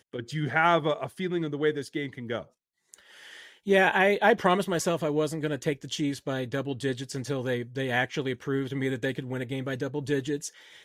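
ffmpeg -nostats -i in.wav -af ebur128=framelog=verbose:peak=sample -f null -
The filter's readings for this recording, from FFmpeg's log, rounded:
Integrated loudness:
  I:         -27.9 LUFS
  Threshold: -38.3 LUFS
Loudness range:
  LRA:         4.9 LU
  Threshold: -48.2 LUFS
  LRA low:   -30.6 LUFS
  LRA high:  -25.7 LUFS
Sample peak:
  Peak:       -8.3 dBFS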